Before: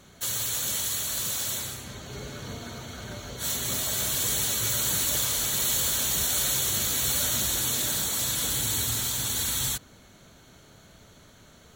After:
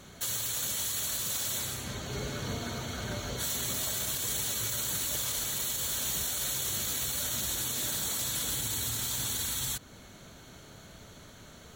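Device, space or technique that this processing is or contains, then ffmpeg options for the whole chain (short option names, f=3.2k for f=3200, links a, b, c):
stacked limiters: -af "alimiter=limit=-18.5dB:level=0:latency=1:release=195,alimiter=limit=-22dB:level=0:latency=1:release=29,alimiter=level_in=1.5dB:limit=-24dB:level=0:latency=1:release=236,volume=-1.5dB,volume=2.5dB"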